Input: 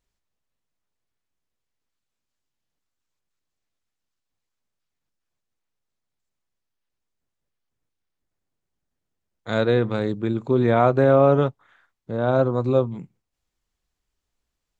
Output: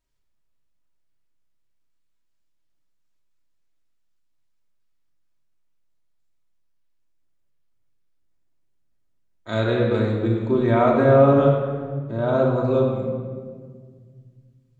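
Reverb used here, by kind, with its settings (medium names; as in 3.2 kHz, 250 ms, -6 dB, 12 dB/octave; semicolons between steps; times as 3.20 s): simulated room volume 2300 m³, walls mixed, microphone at 2.8 m; trim -4 dB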